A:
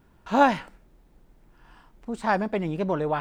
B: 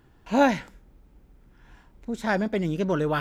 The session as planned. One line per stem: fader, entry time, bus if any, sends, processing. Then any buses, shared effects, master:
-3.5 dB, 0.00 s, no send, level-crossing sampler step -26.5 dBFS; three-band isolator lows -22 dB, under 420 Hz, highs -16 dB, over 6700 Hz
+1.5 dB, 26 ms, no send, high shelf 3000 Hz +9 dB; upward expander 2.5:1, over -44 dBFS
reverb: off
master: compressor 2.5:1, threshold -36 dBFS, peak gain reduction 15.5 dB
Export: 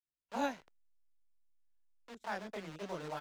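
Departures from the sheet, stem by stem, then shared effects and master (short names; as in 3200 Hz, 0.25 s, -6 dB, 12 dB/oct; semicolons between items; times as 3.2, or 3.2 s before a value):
stem A -3.5 dB -> -14.0 dB; stem B +1.5 dB -> -6.0 dB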